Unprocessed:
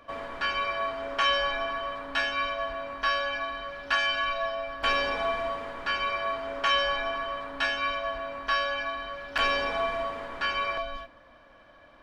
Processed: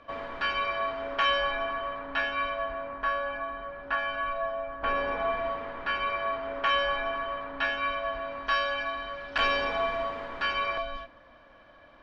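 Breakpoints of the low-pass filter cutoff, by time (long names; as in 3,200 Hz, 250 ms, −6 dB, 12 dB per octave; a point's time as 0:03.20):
0:00.72 4,400 Hz
0:01.89 2,600 Hz
0:02.56 2,600 Hz
0:03.15 1,500 Hz
0:04.94 1,500 Hz
0:05.46 2,800 Hz
0:07.92 2,800 Hz
0:08.57 5,000 Hz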